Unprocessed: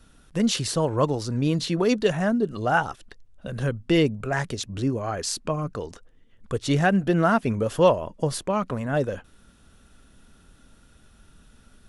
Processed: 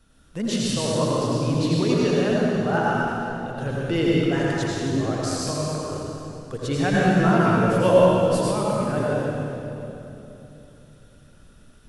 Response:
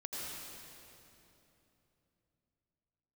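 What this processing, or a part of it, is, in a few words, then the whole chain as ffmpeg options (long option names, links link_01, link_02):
stairwell: -filter_complex "[1:a]atrim=start_sample=2205[link_01];[0:a][link_01]afir=irnorm=-1:irlink=0,asettb=1/sr,asplit=3[link_02][link_03][link_04];[link_02]atrim=end=6.924[link_05];[link_03]atrim=start=6.92:end=8.51,asetpts=PTS-STARTPTS,afade=type=in:duration=0.004:curve=qsin,afade=type=out:start_time=1.586:duration=0.004:curve=qsin,asplit=2[link_06][link_07];[link_07]adelay=16,volume=-2.5dB[link_08];[link_06][link_08]amix=inputs=2:normalize=0,atrim=end_sample=70119[link_09];[link_04]atrim=start=8.506[link_10];[link_05][link_09]acrossfade=duration=0.004:curve1=hsin:curve2=qsin[link_11];[link_11][link_10]acrossfade=duration=0.004:curve1=qsin:curve2=hsin"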